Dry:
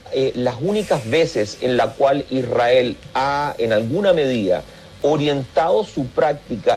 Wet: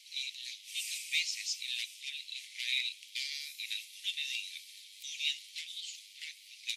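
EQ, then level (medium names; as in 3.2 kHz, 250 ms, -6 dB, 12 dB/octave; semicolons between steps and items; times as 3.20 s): steep high-pass 2.2 kHz 72 dB/octave; treble shelf 7.7 kHz +9 dB; -6.0 dB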